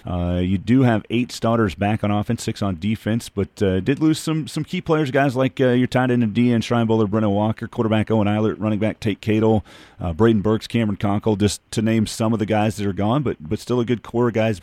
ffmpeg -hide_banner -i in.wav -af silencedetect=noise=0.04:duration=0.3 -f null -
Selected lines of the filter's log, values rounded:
silence_start: 9.60
silence_end: 10.01 | silence_duration: 0.41